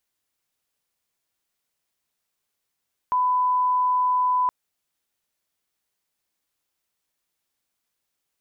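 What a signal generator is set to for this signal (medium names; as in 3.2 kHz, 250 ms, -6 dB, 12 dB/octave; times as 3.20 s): line-up tone -18 dBFS 1.37 s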